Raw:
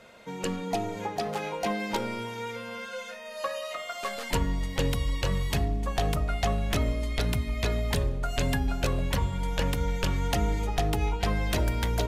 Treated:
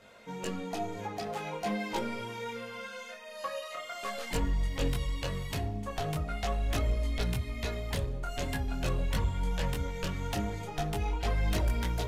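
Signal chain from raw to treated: saturation -19 dBFS, distortion -20 dB; detune thickener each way 15 cents

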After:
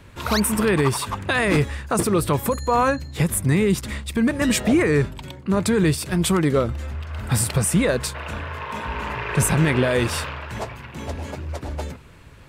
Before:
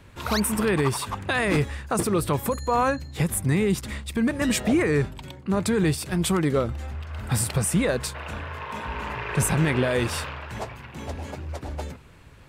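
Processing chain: band-stop 780 Hz, Q 19; trim +3.5 dB

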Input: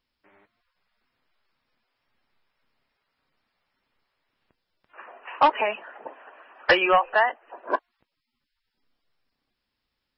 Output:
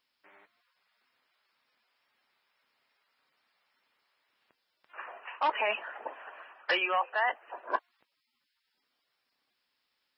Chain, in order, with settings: high-pass 800 Hz 6 dB/octave; reverse; compression 6:1, threshold -29 dBFS, peak gain reduction 13.5 dB; reverse; trim +3 dB

